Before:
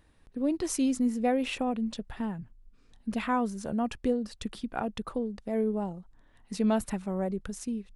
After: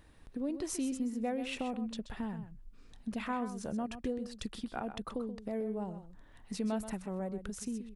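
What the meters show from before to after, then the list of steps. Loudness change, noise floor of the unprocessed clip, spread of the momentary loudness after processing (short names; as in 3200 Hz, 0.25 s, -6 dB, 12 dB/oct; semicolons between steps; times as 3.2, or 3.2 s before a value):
-7.0 dB, -61 dBFS, 8 LU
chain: compressor 2:1, threshold -45 dBFS, peak gain reduction 12.5 dB; on a send: echo 0.129 s -11 dB; on the sum: gain +3 dB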